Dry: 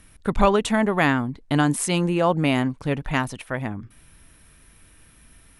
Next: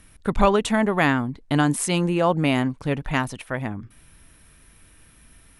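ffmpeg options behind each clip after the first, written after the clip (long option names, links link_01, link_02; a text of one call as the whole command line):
ffmpeg -i in.wav -af anull out.wav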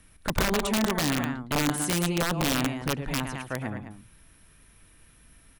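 ffmpeg -i in.wav -filter_complex "[0:a]aecho=1:1:110.8|209.9:0.316|0.282,acrossover=split=380|3000[link_01][link_02][link_03];[link_02]acompressor=threshold=-23dB:ratio=6[link_04];[link_01][link_04][link_03]amix=inputs=3:normalize=0,aeval=exprs='(mod(4.73*val(0)+1,2)-1)/4.73':channel_layout=same,volume=-4.5dB" out.wav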